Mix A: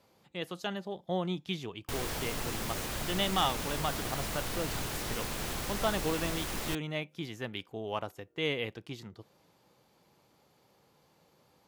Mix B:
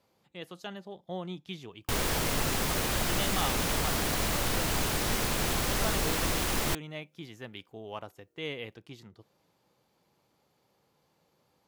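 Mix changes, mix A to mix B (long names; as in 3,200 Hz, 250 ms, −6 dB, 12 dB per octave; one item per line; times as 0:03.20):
speech −5.0 dB
background +7.0 dB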